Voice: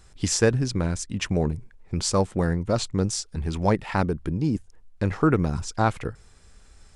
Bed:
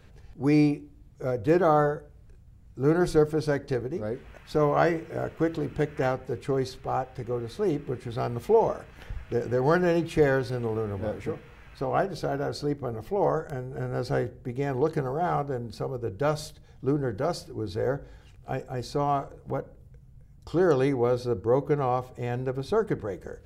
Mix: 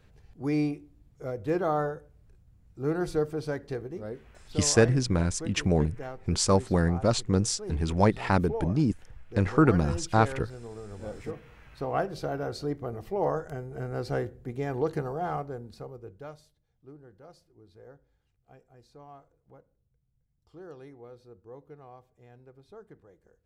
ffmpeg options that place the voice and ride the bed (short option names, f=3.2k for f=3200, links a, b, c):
-filter_complex "[0:a]adelay=4350,volume=-0.5dB[a];[1:a]volume=4dB,afade=t=out:st=4.23:d=0.38:silence=0.446684,afade=t=in:st=10.82:d=0.65:silence=0.316228,afade=t=out:st=14.98:d=1.45:silence=0.0944061[b];[a][b]amix=inputs=2:normalize=0"